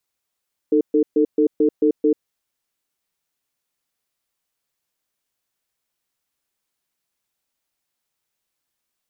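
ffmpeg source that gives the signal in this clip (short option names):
-f lavfi -i "aevalsrc='0.168*(sin(2*PI*306*t)+sin(2*PI*446*t))*clip(min(mod(t,0.22),0.09-mod(t,0.22))/0.005,0,1)':d=1.54:s=44100"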